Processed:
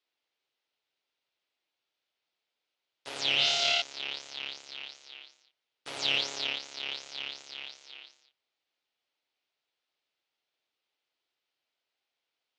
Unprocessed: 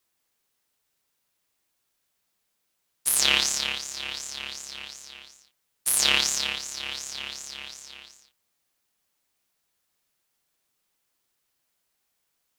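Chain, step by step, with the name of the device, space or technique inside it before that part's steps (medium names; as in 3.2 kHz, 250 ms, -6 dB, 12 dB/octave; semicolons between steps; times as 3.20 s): guitar amplifier (valve stage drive 20 dB, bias 0.7; tone controls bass -9 dB, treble +13 dB; cabinet simulation 97–3500 Hz, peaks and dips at 190 Hz -10 dB, 1.1 kHz -5 dB, 1.7 kHz -4 dB); 3.35–3.82 s: flutter echo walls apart 4.7 m, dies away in 1.5 s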